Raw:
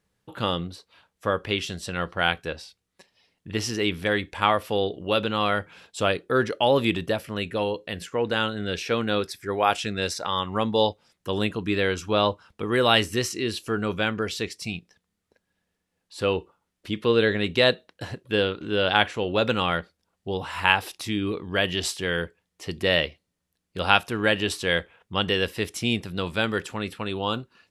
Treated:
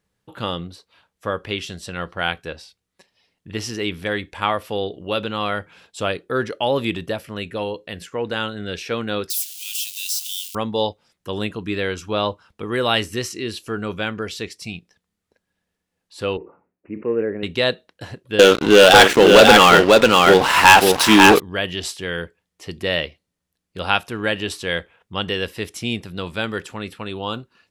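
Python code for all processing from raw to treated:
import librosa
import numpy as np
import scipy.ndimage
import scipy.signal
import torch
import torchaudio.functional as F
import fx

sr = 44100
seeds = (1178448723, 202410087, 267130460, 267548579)

y = fx.chain(x, sr, fx.crossing_spikes(level_db=-18.0),
    fx.ellip_highpass(hz=2800.0, order=4, stop_db=70), at=(9.3, 10.55))
y = fx.chain(y, sr, fx.bandpass_q(hz=370.0, q=0.9),
    fx.resample_bad(factor=8, down='none', up='filtered'),
    fx.sustainer(db_per_s=140.0), at=(16.37, 17.43))
y = fx.chain(y, sr, fx.highpass(hz=220.0, slope=12),
    fx.echo_multitap(ms=(46, 544), db=(-18.5, -4.5)),
    fx.leveller(passes=5), at=(18.39, 21.4))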